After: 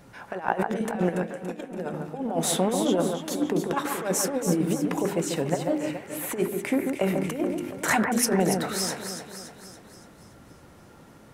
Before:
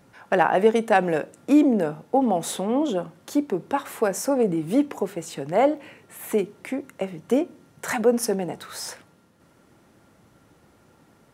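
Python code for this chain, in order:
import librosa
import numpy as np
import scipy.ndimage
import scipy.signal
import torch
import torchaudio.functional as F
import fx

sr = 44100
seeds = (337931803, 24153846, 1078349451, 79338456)

y = fx.low_shelf(x, sr, hz=63.0, db=8.5)
y = fx.hum_notches(y, sr, base_hz=50, count=8)
y = fx.over_compress(y, sr, threshold_db=-25.0, ratio=-0.5)
y = fx.comb_fb(y, sr, f0_hz=180.0, decay_s=0.2, harmonics='all', damping=0.0, mix_pct=70, at=(1.09, 1.94))
y = fx.echo_alternate(y, sr, ms=142, hz=2100.0, feedback_pct=72, wet_db=-5)
y = fx.sustainer(y, sr, db_per_s=46.0, at=(7.04, 7.95), fade=0.02)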